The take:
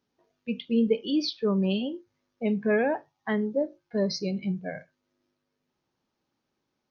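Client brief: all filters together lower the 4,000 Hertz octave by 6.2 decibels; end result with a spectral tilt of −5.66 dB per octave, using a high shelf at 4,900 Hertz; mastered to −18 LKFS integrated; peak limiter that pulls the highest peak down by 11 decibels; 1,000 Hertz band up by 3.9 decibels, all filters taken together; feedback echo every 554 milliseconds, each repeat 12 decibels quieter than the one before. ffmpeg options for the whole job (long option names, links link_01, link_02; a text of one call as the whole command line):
ffmpeg -i in.wav -af "equalizer=frequency=1000:width_type=o:gain=5.5,equalizer=frequency=4000:width_type=o:gain=-6.5,highshelf=frequency=4900:gain=-3.5,alimiter=limit=-22.5dB:level=0:latency=1,aecho=1:1:554|1108|1662:0.251|0.0628|0.0157,volume=14.5dB" out.wav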